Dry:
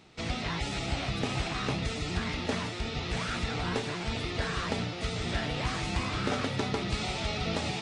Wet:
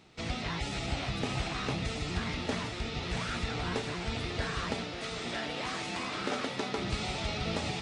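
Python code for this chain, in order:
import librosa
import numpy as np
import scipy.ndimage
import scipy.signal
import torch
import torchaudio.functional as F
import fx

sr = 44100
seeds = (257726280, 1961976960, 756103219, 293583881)

y = fx.highpass(x, sr, hz=230.0, slope=12, at=(4.74, 6.78))
y = fx.echo_feedback(y, sr, ms=547, feedback_pct=51, wet_db=-13.5)
y = y * librosa.db_to_amplitude(-2.0)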